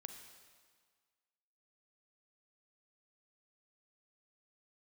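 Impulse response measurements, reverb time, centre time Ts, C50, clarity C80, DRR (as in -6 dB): 1.7 s, 34 ms, 6.5 dB, 7.5 dB, 5.5 dB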